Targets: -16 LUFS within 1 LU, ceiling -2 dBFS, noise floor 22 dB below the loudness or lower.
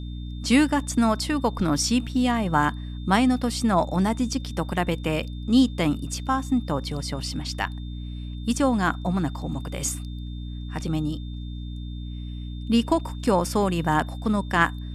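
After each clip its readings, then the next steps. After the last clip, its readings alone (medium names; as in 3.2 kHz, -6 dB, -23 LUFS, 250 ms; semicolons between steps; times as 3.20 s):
hum 60 Hz; highest harmonic 300 Hz; hum level -31 dBFS; steady tone 3.6 kHz; tone level -49 dBFS; loudness -24.5 LUFS; peak level -6.0 dBFS; loudness target -16.0 LUFS
-> hum notches 60/120/180/240/300 Hz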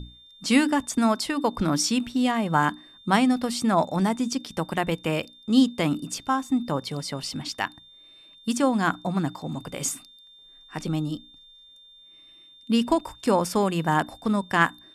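hum not found; steady tone 3.6 kHz; tone level -49 dBFS
-> band-stop 3.6 kHz, Q 30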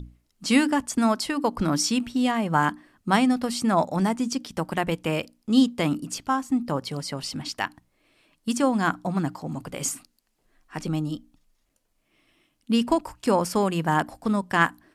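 steady tone not found; loudness -25.0 LUFS; peak level -6.5 dBFS; loudness target -16.0 LUFS
-> trim +9 dB; peak limiter -2 dBFS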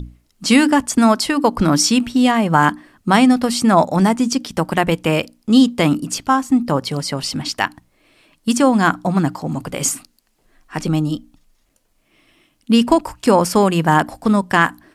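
loudness -16.5 LUFS; peak level -2.0 dBFS; noise floor -63 dBFS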